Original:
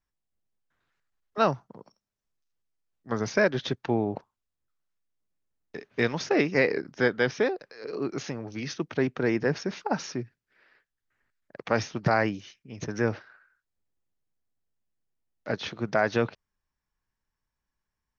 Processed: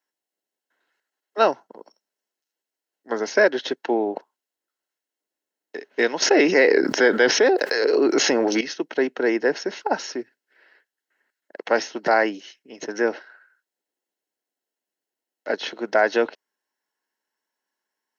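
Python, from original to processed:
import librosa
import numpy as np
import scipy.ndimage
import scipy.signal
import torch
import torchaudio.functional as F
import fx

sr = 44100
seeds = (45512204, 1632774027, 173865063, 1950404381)

y = scipy.signal.sosfilt(scipy.signal.butter(4, 290.0, 'highpass', fs=sr, output='sos'), x)
y = fx.notch_comb(y, sr, f0_hz=1200.0)
y = fx.env_flatten(y, sr, amount_pct=70, at=(6.22, 8.61))
y = F.gain(torch.from_numpy(y), 6.5).numpy()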